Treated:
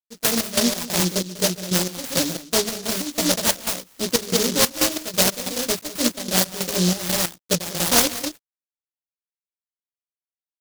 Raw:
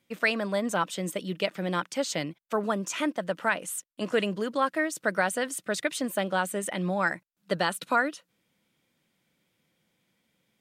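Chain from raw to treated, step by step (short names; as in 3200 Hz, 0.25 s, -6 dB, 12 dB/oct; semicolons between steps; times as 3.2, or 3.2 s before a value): doubler 17 ms -3 dB; loudspeakers at several distances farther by 47 m -9 dB, 67 m -4 dB; crossover distortion -49.5 dBFS; bell 12000 Hz -9 dB 2.2 oct; de-esser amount 85%; step gate "x..xx..xx..xxx" 184 bpm -12 dB; noise-modulated delay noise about 4900 Hz, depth 0.29 ms; gain +6.5 dB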